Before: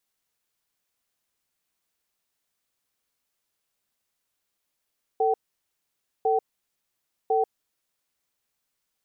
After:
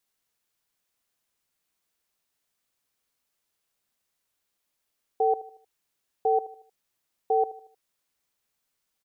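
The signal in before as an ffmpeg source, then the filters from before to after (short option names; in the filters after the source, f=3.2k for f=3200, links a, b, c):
-f lavfi -i "aevalsrc='0.0794*(sin(2*PI*445*t)+sin(2*PI*765*t))*clip(min(mod(t,1.05),0.14-mod(t,1.05))/0.005,0,1)':d=2.96:s=44100"
-af "aecho=1:1:77|154|231|308:0.15|0.0643|0.0277|0.0119"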